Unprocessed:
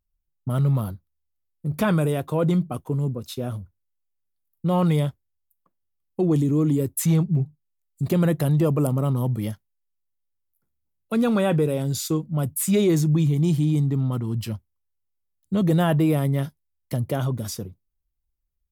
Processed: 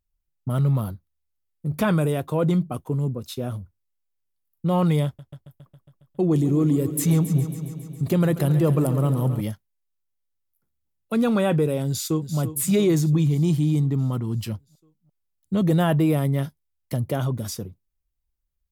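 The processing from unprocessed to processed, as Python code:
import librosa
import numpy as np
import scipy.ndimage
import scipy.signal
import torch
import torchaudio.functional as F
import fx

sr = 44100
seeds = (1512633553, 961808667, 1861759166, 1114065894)

y = fx.echo_heads(x, sr, ms=137, heads='first and second', feedback_pct=61, wet_db=-15.0, at=(5.05, 9.41))
y = fx.echo_throw(y, sr, start_s=11.87, length_s=0.5, ms=340, feedback_pct=65, wet_db=-11.5)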